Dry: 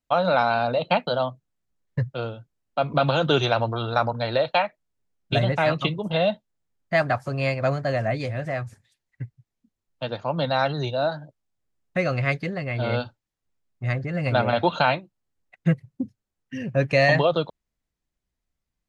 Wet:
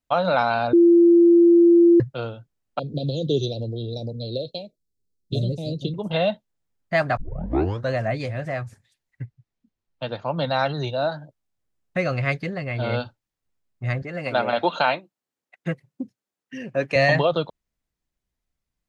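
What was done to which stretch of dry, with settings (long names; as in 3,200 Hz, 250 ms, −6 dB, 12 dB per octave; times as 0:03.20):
0:00.73–0:02.00: beep over 342 Hz −10 dBFS
0:02.79–0:05.94: elliptic band-stop filter 460–4,100 Hz, stop band 70 dB
0:07.17: tape start 0.76 s
0:09.23–0:10.41: low-pass filter 5,700 Hz
0:14.02–0:16.96: high-pass filter 250 Hz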